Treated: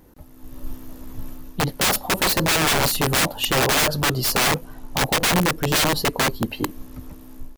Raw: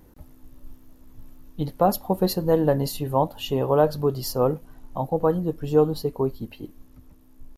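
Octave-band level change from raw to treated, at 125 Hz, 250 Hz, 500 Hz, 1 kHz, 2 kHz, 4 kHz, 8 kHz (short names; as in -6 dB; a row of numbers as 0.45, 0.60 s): +1.5, 0.0, -4.0, +4.0, +21.5, +15.5, +17.5 dB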